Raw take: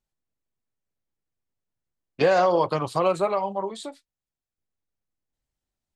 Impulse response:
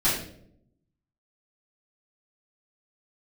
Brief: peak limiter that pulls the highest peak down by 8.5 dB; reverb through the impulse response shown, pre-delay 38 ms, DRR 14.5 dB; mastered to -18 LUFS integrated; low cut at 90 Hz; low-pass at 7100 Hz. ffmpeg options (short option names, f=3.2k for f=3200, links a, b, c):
-filter_complex "[0:a]highpass=90,lowpass=7.1k,alimiter=limit=-18dB:level=0:latency=1,asplit=2[a][b];[1:a]atrim=start_sample=2205,adelay=38[c];[b][c]afir=irnorm=-1:irlink=0,volume=-27.5dB[d];[a][d]amix=inputs=2:normalize=0,volume=10.5dB"